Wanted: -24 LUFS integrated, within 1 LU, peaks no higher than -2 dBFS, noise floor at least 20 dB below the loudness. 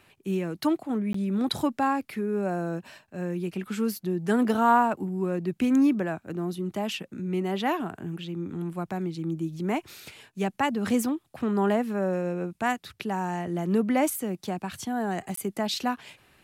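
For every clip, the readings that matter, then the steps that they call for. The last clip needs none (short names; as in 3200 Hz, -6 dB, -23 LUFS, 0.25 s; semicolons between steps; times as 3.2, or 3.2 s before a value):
dropouts 2; longest dropout 14 ms; loudness -28.0 LUFS; peak -8.5 dBFS; loudness target -24.0 LUFS
-> interpolate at 1.13/15.36, 14 ms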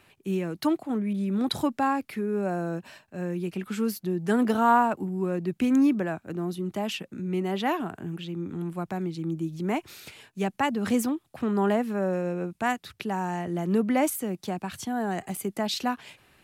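dropouts 0; loudness -28.0 LUFS; peak -8.5 dBFS; loudness target -24.0 LUFS
-> gain +4 dB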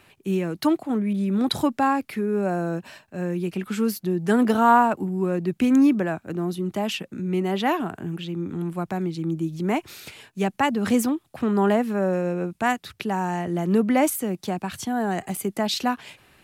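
loudness -24.0 LUFS; peak -4.5 dBFS; noise floor -64 dBFS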